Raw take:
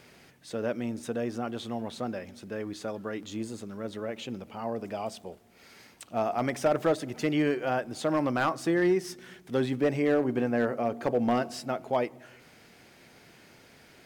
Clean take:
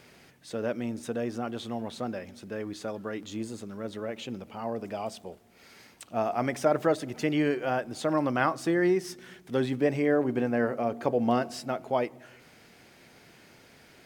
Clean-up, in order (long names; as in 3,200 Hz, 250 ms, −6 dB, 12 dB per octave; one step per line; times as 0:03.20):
clipped peaks rebuilt −17.5 dBFS